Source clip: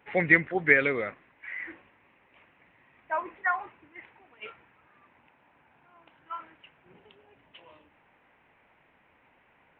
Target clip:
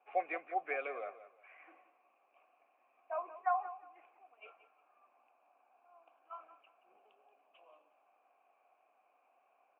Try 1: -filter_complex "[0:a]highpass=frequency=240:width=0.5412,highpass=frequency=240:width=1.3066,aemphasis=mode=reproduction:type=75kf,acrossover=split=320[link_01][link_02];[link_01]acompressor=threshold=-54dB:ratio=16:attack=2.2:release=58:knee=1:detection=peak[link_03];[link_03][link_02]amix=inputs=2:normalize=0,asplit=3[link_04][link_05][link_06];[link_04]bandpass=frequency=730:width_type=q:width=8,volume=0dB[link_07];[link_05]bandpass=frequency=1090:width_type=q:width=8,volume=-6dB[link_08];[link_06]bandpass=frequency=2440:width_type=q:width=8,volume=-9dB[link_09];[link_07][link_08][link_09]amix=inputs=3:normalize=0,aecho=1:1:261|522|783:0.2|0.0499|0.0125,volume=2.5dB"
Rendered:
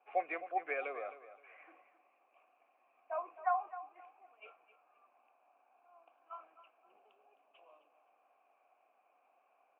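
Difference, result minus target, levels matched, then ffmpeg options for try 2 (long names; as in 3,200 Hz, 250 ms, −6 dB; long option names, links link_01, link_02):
echo 83 ms late
-filter_complex "[0:a]highpass=frequency=240:width=0.5412,highpass=frequency=240:width=1.3066,aemphasis=mode=reproduction:type=75kf,acrossover=split=320[link_01][link_02];[link_01]acompressor=threshold=-54dB:ratio=16:attack=2.2:release=58:knee=1:detection=peak[link_03];[link_03][link_02]amix=inputs=2:normalize=0,asplit=3[link_04][link_05][link_06];[link_04]bandpass=frequency=730:width_type=q:width=8,volume=0dB[link_07];[link_05]bandpass=frequency=1090:width_type=q:width=8,volume=-6dB[link_08];[link_06]bandpass=frequency=2440:width_type=q:width=8,volume=-9dB[link_09];[link_07][link_08][link_09]amix=inputs=3:normalize=0,aecho=1:1:178|356|534:0.2|0.0499|0.0125,volume=2.5dB"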